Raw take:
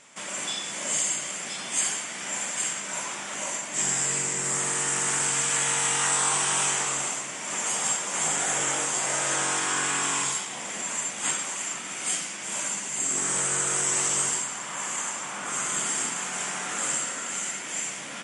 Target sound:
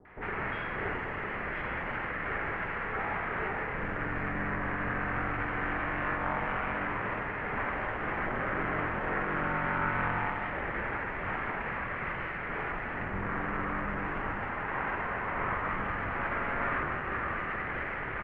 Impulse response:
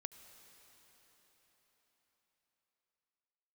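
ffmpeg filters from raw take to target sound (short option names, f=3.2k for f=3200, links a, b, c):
-filter_complex "[0:a]lowshelf=f=220:g=5.5,acrossover=split=240[a][b];[b]alimiter=limit=-22dB:level=0:latency=1[c];[a][c]amix=inputs=2:normalize=0,aeval=exprs='max(val(0),0)':c=same,highpass=f=160:t=q:w=0.5412,highpass=f=160:t=q:w=1.307,lowpass=f=2.2k:t=q:w=0.5176,lowpass=f=2.2k:t=q:w=0.7071,lowpass=f=2.2k:t=q:w=1.932,afreqshift=-170,acrossover=split=720[d][e];[e]adelay=50[f];[d][f]amix=inputs=2:normalize=0,asplit=2[g][h];[1:a]atrim=start_sample=2205,lowpass=2.6k[i];[h][i]afir=irnorm=-1:irlink=0,volume=6.5dB[j];[g][j]amix=inputs=2:normalize=0,crystalizer=i=5:c=0,volume=1.5dB"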